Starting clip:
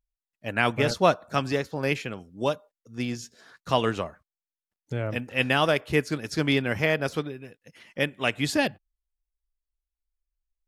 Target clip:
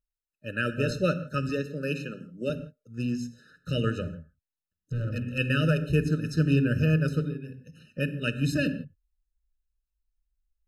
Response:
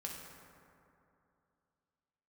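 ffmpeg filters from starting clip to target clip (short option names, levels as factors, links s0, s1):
-filter_complex "[0:a]asettb=1/sr,asplit=3[s0][s1][s2];[s0]atrim=end=1.494[s3];[s1]atrim=start=1.49:end=2.5,asetpts=PTS-STARTPTS,afade=t=in:d=0.004:c=qsin,afade=t=out:st=1.006:d=0.004:c=qsin,highpass=f=160:w=0.5412,highpass=f=160:w=1.3066[s4];[s2]atrim=start=2.496[s5];[s3][s4]acrossfade=d=0.004:c1=hsin:c2=qsin[s6];[s6][s5]acrossfade=d=0.004:c1=qsin:c2=hsin,asplit=2[s7][s8];[s8]asubboost=boost=8.5:cutoff=230[s9];[1:a]atrim=start_sample=2205,afade=t=out:st=0.22:d=0.01,atrim=end_sample=10143[s10];[s9][s10]afir=irnorm=-1:irlink=0,volume=0.668[s11];[s7][s11]amix=inputs=2:normalize=0,asettb=1/sr,asplit=3[s12][s13][s14];[s12]atrim=end=4.034[s15];[s13]atrim=start=4.03:end=5.38,asetpts=PTS-STARTPTS,afade=t=in:d=0.004:c=qsin,afade=t=out:st=1.346:d=0.004:c=qsin,volume=10,asoftclip=hard,volume=0.1[s16];[s14]atrim=start=5.376[s17];[s15][s16]acrossfade=d=0.004:c1=hsin:c2=qsin[s18];[s18][s17]acrossfade=d=0.004:c1=qsin:c2=hsin,afftfilt=real='re*eq(mod(floor(b*sr/1024/610),2),0)':imag='im*eq(mod(floor(b*sr/1024/610),2),0)':win_size=1024:overlap=0.75,volume=0.501"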